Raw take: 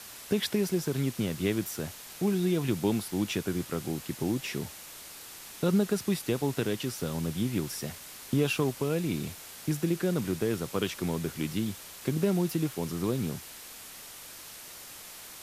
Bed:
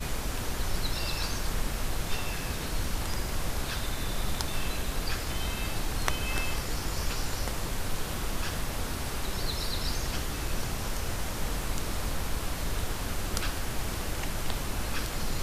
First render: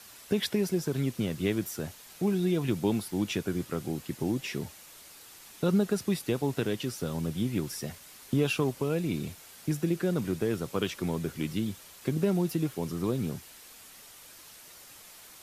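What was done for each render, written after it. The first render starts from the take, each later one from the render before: noise reduction 6 dB, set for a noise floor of -46 dBFS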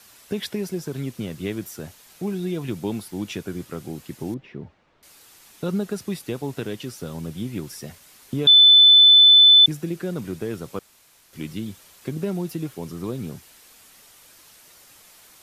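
4.34–5.03 s: tape spacing loss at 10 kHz 45 dB; 8.47–9.66 s: bleep 3.51 kHz -8 dBFS; 10.79–11.33 s: room tone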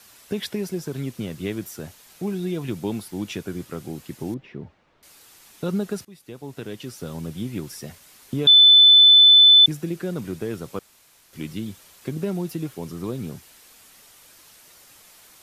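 6.05–7.10 s: fade in, from -22.5 dB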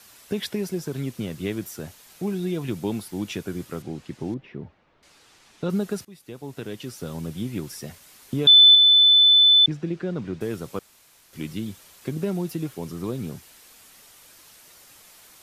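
3.82–5.70 s: distance through air 75 m; 8.75–10.41 s: distance through air 140 m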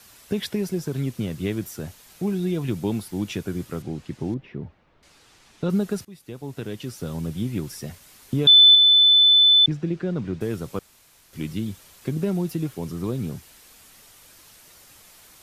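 bass shelf 150 Hz +7.5 dB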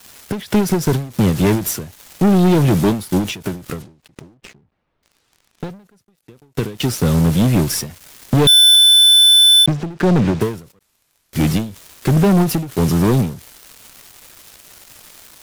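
waveshaping leveller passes 5; endings held to a fixed fall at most 130 dB/s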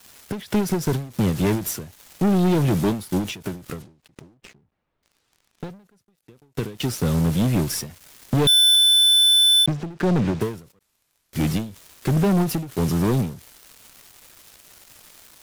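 trim -6 dB

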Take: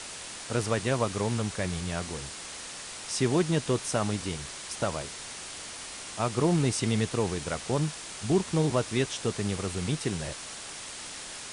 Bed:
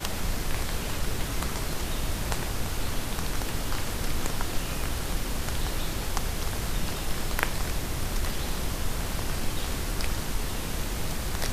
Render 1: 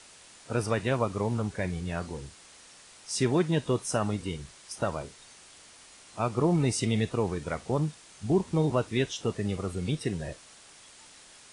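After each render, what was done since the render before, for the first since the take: noise print and reduce 12 dB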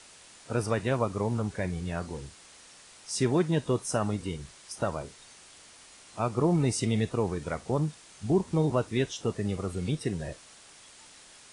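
dynamic bell 2.9 kHz, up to -3 dB, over -46 dBFS, Q 0.96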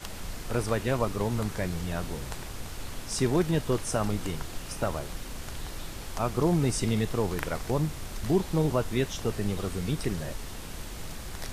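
add bed -8.5 dB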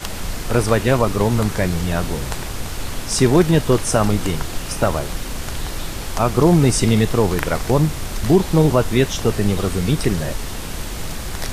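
trim +11.5 dB; peak limiter -3 dBFS, peak gain reduction 2 dB

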